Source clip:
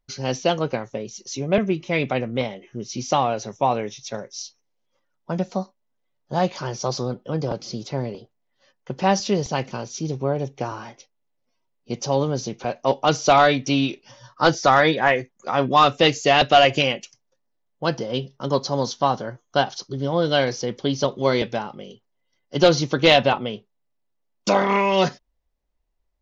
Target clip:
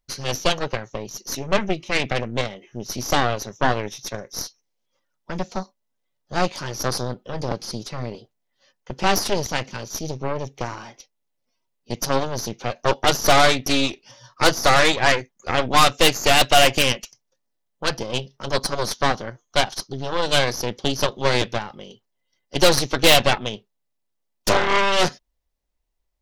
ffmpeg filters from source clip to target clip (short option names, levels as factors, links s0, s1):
-af "highshelf=f=2800:g=7,aeval=exprs='0.841*(cos(1*acos(clip(val(0)/0.841,-1,1)))-cos(1*PI/2))+0.188*(cos(8*acos(clip(val(0)/0.841,-1,1)))-cos(8*PI/2))':c=same,volume=0.75"